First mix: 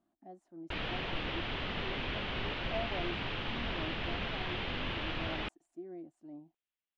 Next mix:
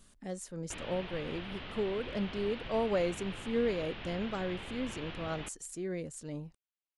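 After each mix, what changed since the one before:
speech: remove pair of resonant band-passes 480 Hz, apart 1.1 octaves
background −7.0 dB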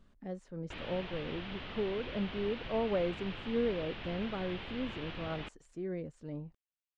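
speech: add head-to-tape spacing loss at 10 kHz 31 dB

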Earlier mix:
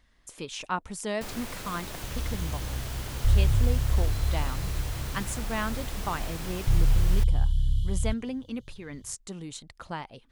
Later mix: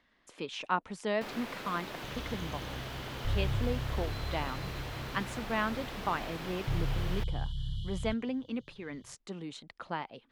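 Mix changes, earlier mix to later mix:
first sound: add parametric band 13,000 Hz +7 dB 0.29 octaves
second sound +4.0 dB
master: add three-way crossover with the lows and the highs turned down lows −17 dB, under 160 Hz, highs −17 dB, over 4,400 Hz

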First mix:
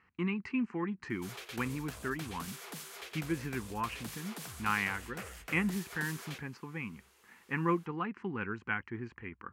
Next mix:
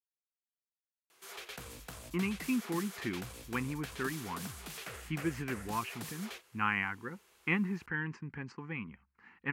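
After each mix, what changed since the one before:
speech: entry +1.95 s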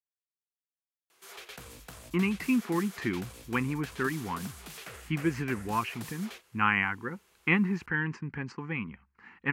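speech +6.0 dB

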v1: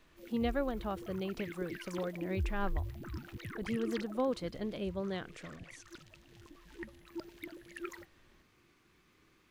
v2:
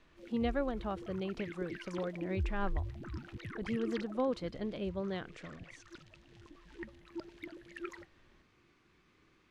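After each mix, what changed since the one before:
master: add high-frequency loss of the air 70 metres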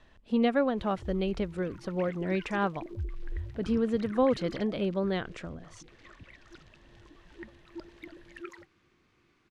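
speech +8.0 dB
background: entry +0.60 s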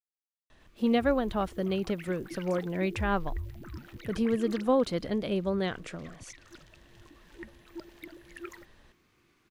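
speech: entry +0.50 s
master: remove high-frequency loss of the air 70 metres

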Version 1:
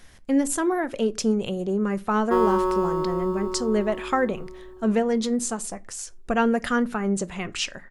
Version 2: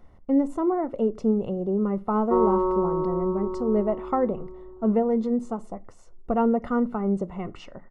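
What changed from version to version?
master: add Savitzky-Golay smoothing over 65 samples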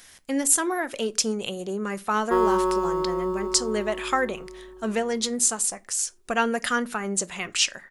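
speech: add spectral tilt +3 dB per octave
master: remove Savitzky-Golay smoothing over 65 samples

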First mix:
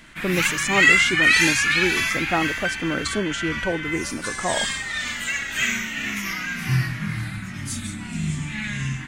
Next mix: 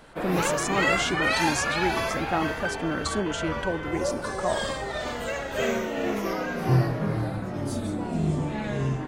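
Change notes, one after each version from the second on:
speech −3.5 dB
first sound: remove drawn EQ curve 220 Hz 0 dB, 490 Hz −25 dB, 2,100 Hz +13 dB, 4,700 Hz +6 dB, 7,000 Hz +13 dB, 13,000 Hz +7 dB
second sound: add spectral tilt −2 dB per octave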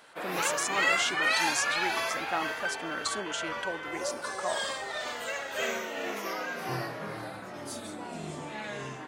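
master: add high-pass filter 1,100 Hz 6 dB per octave

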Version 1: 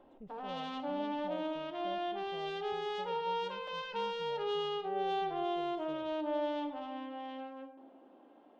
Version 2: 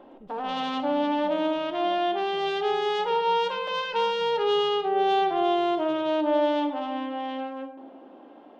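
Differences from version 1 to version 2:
speech: send +11.5 dB
background +11.5 dB

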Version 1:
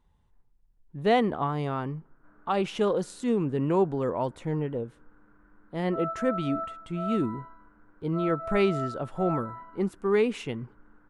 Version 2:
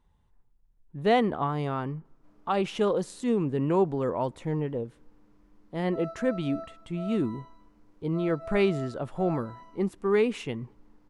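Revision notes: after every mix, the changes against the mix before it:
background: remove low-pass with resonance 1,500 Hz, resonance Q 8.4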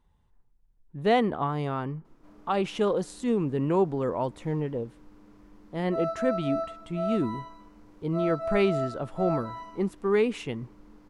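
background +9.0 dB

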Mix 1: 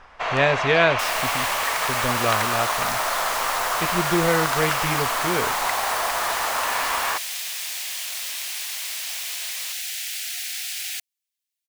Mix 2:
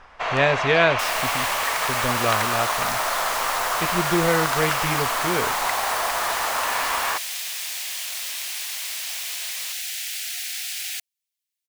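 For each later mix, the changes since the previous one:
nothing changed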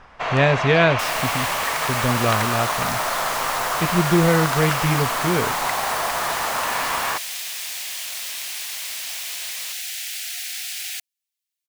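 master: add parametric band 150 Hz +8.5 dB 2.1 octaves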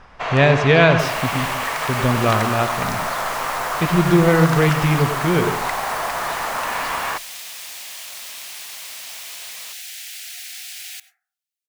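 second sound −6.0 dB
reverb: on, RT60 0.50 s

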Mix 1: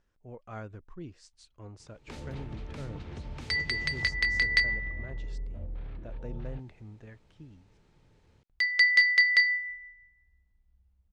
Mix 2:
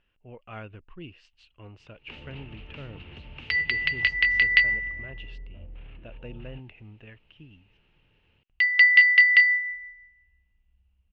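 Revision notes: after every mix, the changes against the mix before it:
first sound −5.0 dB
master: add low-pass with resonance 2,800 Hz, resonance Q 10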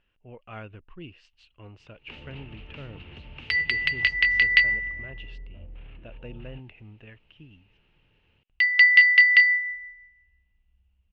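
second sound: remove high-frequency loss of the air 70 metres

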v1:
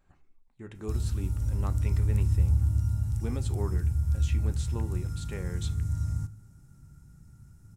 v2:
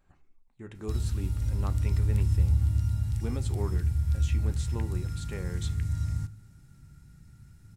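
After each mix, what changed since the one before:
background: add flat-topped bell 2,800 Hz +9 dB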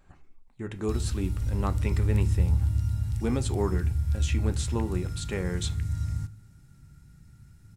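speech +8.0 dB

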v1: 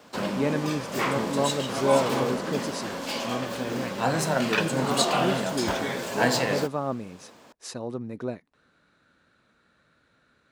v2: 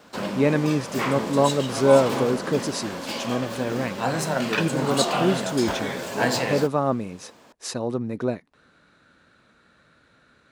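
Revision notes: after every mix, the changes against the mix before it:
speech +6.5 dB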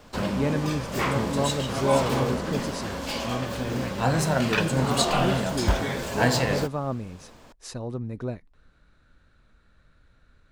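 speech −8.0 dB
master: remove high-pass filter 190 Hz 12 dB per octave

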